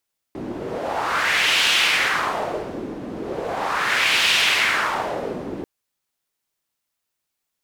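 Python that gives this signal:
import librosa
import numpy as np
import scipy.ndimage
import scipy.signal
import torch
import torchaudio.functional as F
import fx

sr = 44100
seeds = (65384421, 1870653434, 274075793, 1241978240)

y = fx.wind(sr, seeds[0], length_s=5.29, low_hz=300.0, high_hz=2900.0, q=2.1, gusts=2, swing_db=13.0)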